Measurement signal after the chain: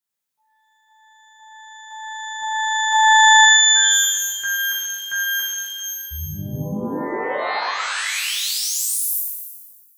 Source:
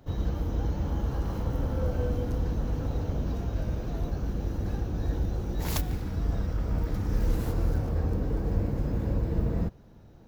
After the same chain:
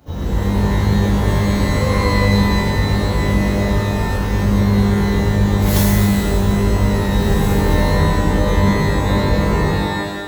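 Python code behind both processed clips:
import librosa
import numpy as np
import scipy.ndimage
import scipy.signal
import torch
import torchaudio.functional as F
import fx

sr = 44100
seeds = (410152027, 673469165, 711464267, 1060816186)

y = scipy.signal.sosfilt(scipy.signal.butter(2, 43.0, 'highpass', fs=sr, output='sos'), x)
y = fx.high_shelf(y, sr, hz=6400.0, db=5.5)
y = fx.rev_shimmer(y, sr, seeds[0], rt60_s=1.3, semitones=12, shimmer_db=-2, drr_db=-6.5)
y = F.gain(torch.from_numpy(y), 3.0).numpy()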